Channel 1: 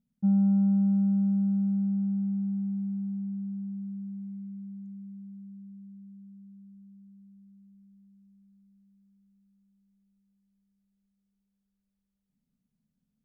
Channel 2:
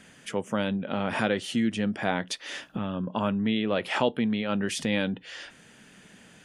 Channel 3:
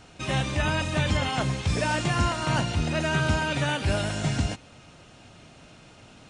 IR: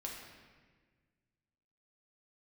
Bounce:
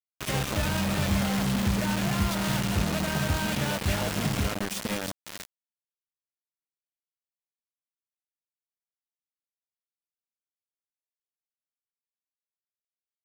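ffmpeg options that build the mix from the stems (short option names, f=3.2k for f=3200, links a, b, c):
-filter_complex "[0:a]adelay=550,volume=-6.5dB,asplit=3[a][b][c];[b]volume=-9dB[d];[c]volume=-6.5dB[e];[1:a]equalizer=f=680:t=o:w=0.27:g=5.5,acompressor=threshold=-32dB:ratio=4,volume=1dB,asplit=3[f][g][h];[g]volume=-20dB[i];[h]volume=-10.5dB[j];[2:a]aemphasis=mode=reproduction:type=cd,volume=-2dB[k];[3:a]atrim=start_sample=2205[l];[d][i]amix=inputs=2:normalize=0[m];[m][l]afir=irnorm=-1:irlink=0[n];[e][j]amix=inputs=2:normalize=0,aecho=0:1:319:1[o];[a][f][k][n][o]amix=inputs=5:normalize=0,acrossover=split=140[p][q];[q]acompressor=threshold=-28dB:ratio=6[r];[p][r]amix=inputs=2:normalize=0,acrusher=bits=4:mix=0:aa=0.000001"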